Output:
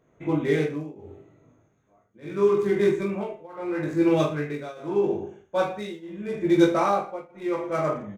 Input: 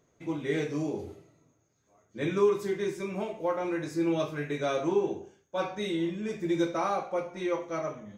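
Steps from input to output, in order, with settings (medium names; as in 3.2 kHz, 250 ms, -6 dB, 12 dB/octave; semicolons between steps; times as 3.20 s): local Wiener filter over 9 samples; reverse bouncing-ball echo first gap 20 ms, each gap 1.25×, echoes 5; tremolo triangle 0.79 Hz, depth 95%; trim +8 dB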